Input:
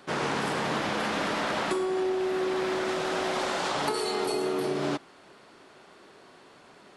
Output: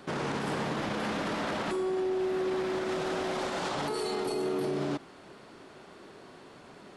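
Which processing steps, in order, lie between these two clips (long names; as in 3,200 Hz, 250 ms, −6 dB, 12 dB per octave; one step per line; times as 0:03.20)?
low-shelf EQ 410 Hz +7.5 dB
brickwall limiter −24 dBFS, peak gain reduction 10.5 dB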